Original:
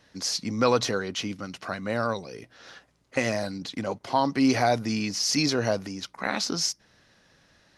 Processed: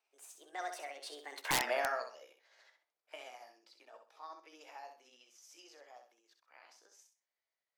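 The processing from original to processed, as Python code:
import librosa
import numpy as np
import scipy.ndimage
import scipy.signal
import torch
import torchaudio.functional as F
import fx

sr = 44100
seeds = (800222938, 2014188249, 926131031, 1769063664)

y = fx.pitch_heads(x, sr, semitones=4.5)
y = fx.doppler_pass(y, sr, speed_mps=37, closest_m=2.7, pass_at_s=1.57)
y = scipy.signal.sosfilt(scipy.signal.butter(4, 480.0, 'highpass', fs=sr, output='sos'), y)
y = fx.peak_eq(y, sr, hz=7200.0, db=-7.5, octaves=0.65)
y = fx.echo_feedback(y, sr, ms=64, feedback_pct=27, wet_db=-7.0)
y = (np.mod(10.0 ** (27.5 / 20.0) * y + 1.0, 2.0) - 1.0) / 10.0 ** (27.5 / 20.0)
y = y * 10.0 ** (5.5 / 20.0)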